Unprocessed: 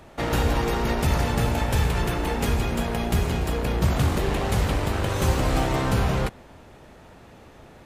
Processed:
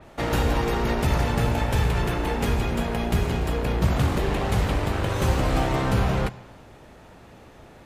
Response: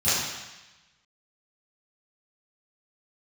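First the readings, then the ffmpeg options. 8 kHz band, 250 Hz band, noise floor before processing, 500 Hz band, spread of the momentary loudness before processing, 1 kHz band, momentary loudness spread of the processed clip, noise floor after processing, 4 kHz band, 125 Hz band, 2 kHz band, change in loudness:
-3.5 dB, 0.0 dB, -48 dBFS, 0.0 dB, 3 LU, 0.0 dB, 3 LU, -48 dBFS, -1.0 dB, 0.0 dB, 0.0 dB, 0.0 dB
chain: -filter_complex "[0:a]asplit=2[a][b];[1:a]atrim=start_sample=2205[c];[b][c]afir=irnorm=-1:irlink=0,volume=-32.5dB[d];[a][d]amix=inputs=2:normalize=0,adynamicequalizer=threshold=0.00501:dfrequency=4500:dqfactor=0.7:tfrequency=4500:tqfactor=0.7:attack=5:release=100:ratio=0.375:range=2:mode=cutabove:tftype=highshelf"

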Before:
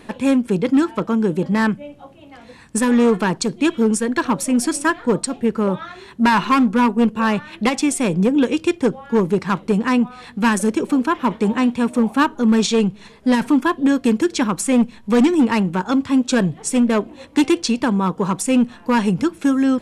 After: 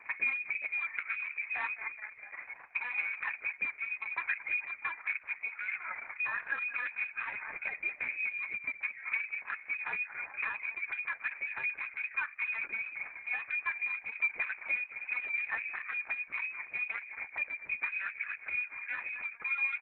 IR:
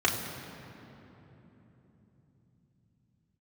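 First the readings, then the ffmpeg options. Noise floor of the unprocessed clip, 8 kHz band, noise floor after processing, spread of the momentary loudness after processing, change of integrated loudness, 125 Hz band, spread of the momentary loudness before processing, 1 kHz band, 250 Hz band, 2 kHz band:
-44 dBFS, under -40 dB, -53 dBFS, 5 LU, -16.0 dB, under -40 dB, 5 LU, -22.5 dB, under -40 dB, -4.5 dB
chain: -filter_complex "[0:a]acrossover=split=230 2100:gain=0.0891 1 0.178[a][b][c];[a][b][c]amix=inputs=3:normalize=0,lowpass=f=2.3k:t=q:w=0.5098,lowpass=f=2.3k:t=q:w=0.6013,lowpass=f=2.3k:t=q:w=0.9,lowpass=f=2.3k:t=q:w=2.563,afreqshift=-2700,asplit=6[d][e][f][g][h][i];[e]adelay=214,afreqshift=-42,volume=-18dB[j];[f]adelay=428,afreqshift=-84,volume=-23.4dB[k];[g]adelay=642,afreqshift=-126,volume=-28.7dB[l];[h]adelay=856,afreqshift=-168,volume=-34.1dB[m];[i]adelay=1070,afreqshift=-210,volume=-39.4dB[n];[d][j][k][l][m][n]amix=inputs=6:normalize=0,asplit=2[o][p];[p]asoftclip=type=hard:threshold=-22.5dB,volume=-6dB[q];[o][q]amix=inputs=2:normalize=0,acompressor=threshold=-25dB:ratio=8,volume=-6dB" -ar 48000 -c:a libopus -b:a 6k

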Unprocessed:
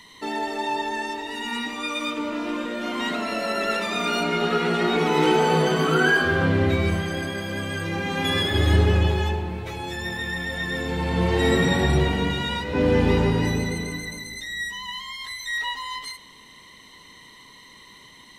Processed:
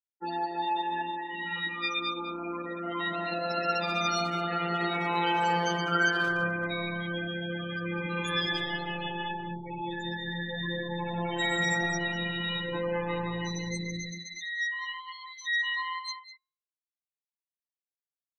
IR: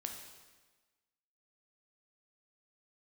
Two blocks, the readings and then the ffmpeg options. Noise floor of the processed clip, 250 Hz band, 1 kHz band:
under -85 dBFS, -10.0 dB, -4.0 dB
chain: -filter_complex "[0:a]afftfilt=real='re*gte(hypot(re,im),0.0631)':imag='im*gte(hypot(re,im),0.0631)':win_size=1024:overlap=0.75,acrossover=split=710|1800[a][b][c];[a]acompressor=threshold=-29dB:ratio=10[d];[d][b][c]amix=inputs=3:normalize=0,aexciter=amount=1.7:drive=8:freq=4.9k,afftfilt=real='hypot(re,im)*cos(PI*b)':imag='0':win_size=1024:overlap=0.75,bandreject=f=264.2:t=h:w=4,bandreject=f=528.4:t=h:w=4,bandreject=f=792.6:t=h:w=4,bandreject=f=1.0568k:t=h:w=4,bandreject=f=1.321k:t=h:w=4,bandreject=f=1.5852k:t=h:w=4,bandreject=f=1.8494k:t=h:w=4,bandreject=f=2.1136k:t=h:w=4,bandreject=f=2.3778k:t=h:w=4,bandreject=f=2.642k:t=h:w=4,bandreject=f=2.9062k:t=h:w=4,bandreject=f=3.1704k:t=h:w=4,bandreject=f=3.4346k:t=h:w=4,bandreject=f=3.6988k:t=h:w=4,bandreject=f=3.963k:t=h:w=4,bandreject=f=4.2272k:t=h:w=4,bandreject=f=4.4914k:t=h:w=4,bandreject=f=4.7556k:t=h:w=4,bandreject=f=5.0198k:t=h:w=4,bandreject=f=5.284k:t=h:w=4,bandreject=f=5.5482k:t=h:w=4,bandreject=f=5.8124k:t=h:w=4,bandreject=f=6.0766k:t=h:w=4,bandreject=f=6.3408k:t=h:w=4,bandreject=f=6.605k:t=h:w=4,bandreject=f=6.8692k:t=h:w=4,bandreject=f=7.1334k:t=h:w=4,asplit=2[e][f];[f]adelay=200,highpass=300,lowpass=3.4k,asoftclip=type=hard:threshold=-21dB,volume=-8dB[g];[e][g]amix=inputs=2:normalize=0"

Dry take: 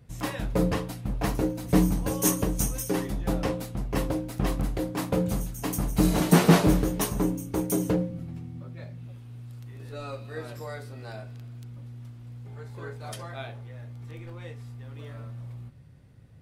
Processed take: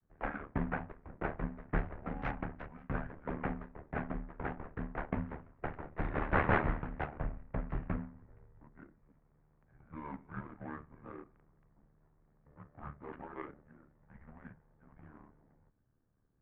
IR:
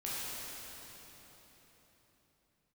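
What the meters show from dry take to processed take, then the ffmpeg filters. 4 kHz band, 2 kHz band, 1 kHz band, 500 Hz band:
-24.0 dB, -3.5 dB, -5.5 dB, -12.5 dB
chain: -filter_complex "[0:a]adynamicequalizer=threshold=0.01:dfrequency=600:dqfactor=1:tfrequency=600:tqfactor=1:attack=5:release=100:ratio=0.375:range=1.5:mode=cutabove:tftype=bell,acrossover=split=150[a][b];[b]adynamicsmooth=sensitivity=6.5:basefreq=600[c];[a][c]amix=inputs=2:normalize=0,aeval=exprs='val(0)*sin(2*PI*37*n/s)':c=same,crystalizer=i=8:c=0,highpass=f=310:t=q:w=0.5412,highpass=f=310:t=q:w=1.307,lowpass=f=2.2k:t=q:w=0.5176,lowpass=f=2.2k:t=q:w=0.7071,lowpass=f=2.2k:t=q:w=1.932,afreqshift=-310,volume=-4dB"

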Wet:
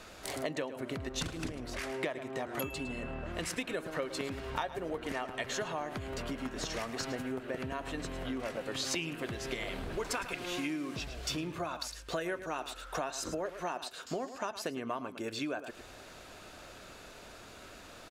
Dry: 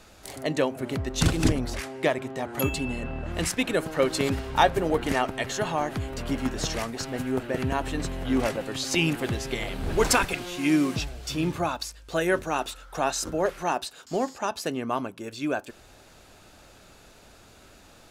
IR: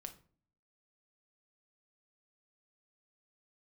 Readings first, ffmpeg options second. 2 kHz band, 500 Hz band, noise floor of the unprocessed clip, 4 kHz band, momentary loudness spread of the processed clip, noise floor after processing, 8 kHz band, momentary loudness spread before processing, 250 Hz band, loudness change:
-8.5 dB, -10.0 dB, -53 dBFS, -7.5 dB, 14 LU, -51 dBFS, -9.0 dB, 9 LU, -11.0 dB, -10.0 dB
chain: -af "highshelf=f=4.7k:g=-6.5,aecho=1:1:108:0.188,acompressor=threshold=-35dB:ratio=12,lowshelf=f=280:g=-7.5,bandreject=f=830:w=12,volume=4.5dB"

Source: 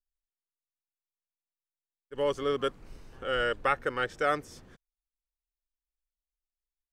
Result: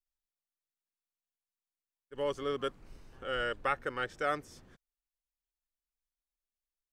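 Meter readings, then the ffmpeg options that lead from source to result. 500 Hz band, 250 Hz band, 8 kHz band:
-5.5 dB, -4.5 dB, -4.5 dB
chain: -af "equalizer=f=470:w=6.5:g=-2.5,volume=-4.5dB"

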